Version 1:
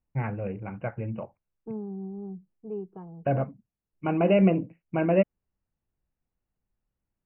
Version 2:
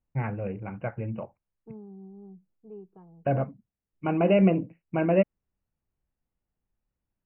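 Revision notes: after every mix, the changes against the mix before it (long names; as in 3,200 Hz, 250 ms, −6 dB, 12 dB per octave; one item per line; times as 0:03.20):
second voice −9.0 dB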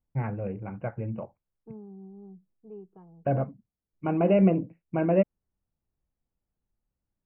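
first voice: add low-pass filter 1,400 Hz 6 dB per octave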